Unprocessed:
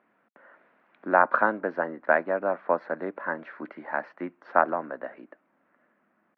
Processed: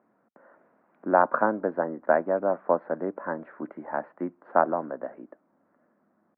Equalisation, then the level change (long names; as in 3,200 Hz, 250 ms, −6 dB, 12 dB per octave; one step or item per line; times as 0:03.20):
low-pass filter 1,000 Hz 12 dB per octave
low-shelf EQ 150 Hz +5 dB
+2.0 dB